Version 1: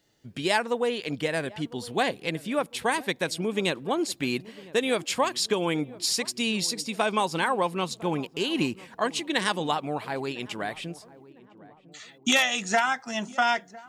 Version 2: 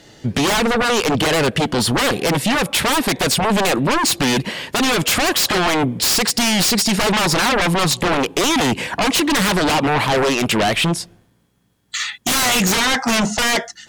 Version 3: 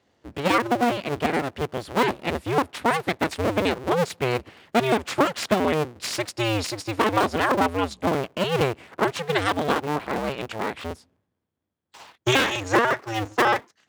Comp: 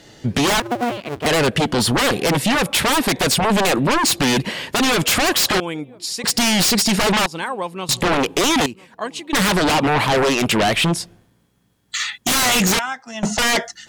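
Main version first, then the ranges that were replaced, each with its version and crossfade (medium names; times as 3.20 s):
2
0.60–1.26 s: from 3
5.60–6.24 s: from 1
7.26–7.89 s: from 1
8.66–9.33 s: from 1
12.79–13.23 s: from 1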